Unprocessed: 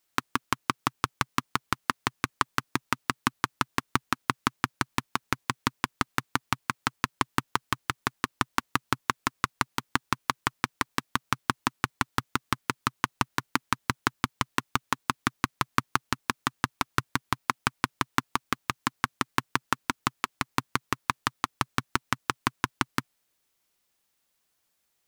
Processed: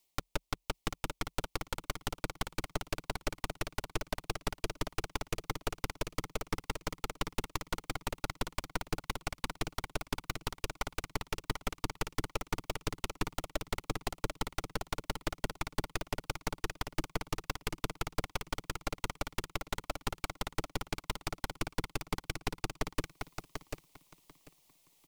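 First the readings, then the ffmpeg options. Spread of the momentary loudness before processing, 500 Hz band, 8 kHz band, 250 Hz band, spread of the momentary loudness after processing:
3 LU, +0.5 dB, -6.0 dB, -8.5 dB, 2 LU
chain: -filter_complex "[0:a]areverse,acompressor=threshold=-34dB:ratio=6,areverse,alimiter=level_in=5.5dB:limit=-24dB:level=0:latency=1:release=219,volume=-5.5dB,afreqshift=38,asuperstop=centerf=1500:order=4:qfactor=1.6,asplit=2[a][b];[b]aecho=0:1:742|1484|2226|2968:0.501|0.155|0.0482|0.0149[c];[a][c]amix=inputs=2:normalize=0,aeval=exprs='0.0282*(cos(1*acos(clip(val(0)/0.0282,-1,1)))-cos(1*PI/2))+0.00398*(cos(3*acos(clip(val(0)/0.0282,-1,1)))-cos(3*PI/2))+0.0126*(cos(8*acos(clip(val(0)/0.0282,-1,1)))-cos(8*PI/2))':c=same,volume=10.5dB"

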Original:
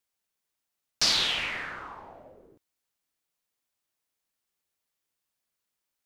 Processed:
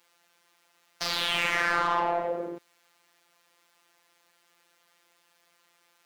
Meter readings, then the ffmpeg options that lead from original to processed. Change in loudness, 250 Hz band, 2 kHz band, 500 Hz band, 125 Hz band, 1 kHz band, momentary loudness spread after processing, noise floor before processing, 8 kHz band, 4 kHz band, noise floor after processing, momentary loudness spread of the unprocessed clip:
-1.5 dB, +8.0 dB, +5.5 dB, +13.5 dB, +4.0 dB, +12.0 dB, 11 LU, -85 dBFS, -7.0 dB, -4.0 dB, -68 dBFS, 19 LU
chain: -filter_complex "[0:a]highpass=110,acompressor=threshold=-31dB:ratio=6,asplit=2[a][b];[b]highpass=f=720:p=1,volume=34dB,asoftclip=type=tanh:threshold=-16.5dB[c];[a][c]amix=inputs=2:normalize=0,lowpass=f=1.5k:p=1,volume=-6dB,afftfilt=real='hypot(re,im)*cos(PI*b)':imag='0':win_size=1024:overlap=0.75,volume=4dB"

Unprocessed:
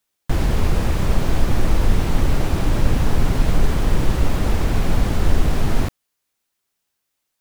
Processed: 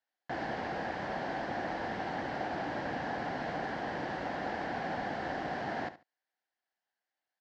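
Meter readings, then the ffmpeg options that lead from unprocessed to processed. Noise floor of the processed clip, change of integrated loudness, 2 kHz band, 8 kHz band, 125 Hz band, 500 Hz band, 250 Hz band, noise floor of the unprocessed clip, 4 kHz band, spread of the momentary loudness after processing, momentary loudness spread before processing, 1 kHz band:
under -85 dBFS, -14.5 dB, -5.5 dB, under -25 dB, -26.0 dB, -9.5 dB, -15.0 dB, -77 dBFS, -14.5 dB, 1 LU, 2 LU, -4.5 dB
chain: -af "highpass=320,equalizer=f=410:t=q:w=4:g=-6,equalizer=f=750:t=q:w=4:g=9,equalizer=f=1.2k:t=q:w=4:g=-7,equalizer=f=1.7k:t=q:w=4:g=8,equalizer=f=2.5k:t=q:w=4:g=-7,equalizer=f=3.6k:t=q:w=4:g=-7,lowpass=f=4.3k:w=0.5412,lowpass=f=4.3k:w=1.3066,aecho=1:1:71|142:0.2|0.0379,volume=-8.5dB"

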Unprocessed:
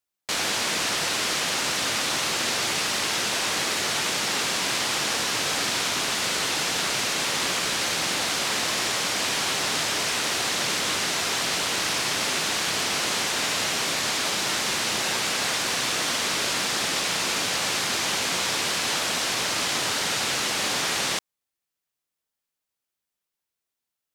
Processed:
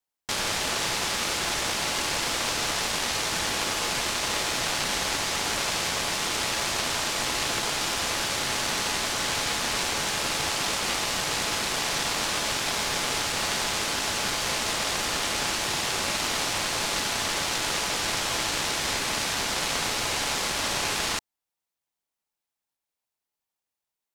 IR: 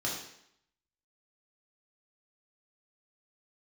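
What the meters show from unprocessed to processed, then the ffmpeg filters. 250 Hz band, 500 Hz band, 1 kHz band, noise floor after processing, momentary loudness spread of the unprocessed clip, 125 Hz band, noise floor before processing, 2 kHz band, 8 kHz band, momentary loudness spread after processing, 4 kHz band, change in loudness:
-1.5 dB, -1.0 dB, -0.5 dB, under -85 dBFS, 0 LU, +1.0 dB, -85 dBFS, -2.5 dB, -2.0 dB, 0 LU, -2.5 dB, -2.0 dB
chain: -af "aeval=exprs='0.266*(cos(1*acos(clip(val(0)/0.266,-1,1)))-cos(1*PI/2))+0.0299*(cos(3*acos(clip(val(0)/0.266,-1,1)))-cos(3*PI/2))+0.00841*(cos(4*acos(clip(val(0)/0.266,-1,1)))-cos(4*PI/2))':c=same,lowshelf=f=160:g=10,aeval=exprs='val(0)*sin(2*PI*850*n/s)':c=same,volume=3.5dB"

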